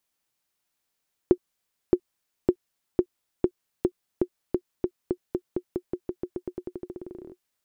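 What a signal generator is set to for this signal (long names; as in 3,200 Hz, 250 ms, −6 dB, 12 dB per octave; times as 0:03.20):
bouncing ball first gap 0.62 s, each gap 0.9, 360 Hz, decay 68 ms −6 dBFS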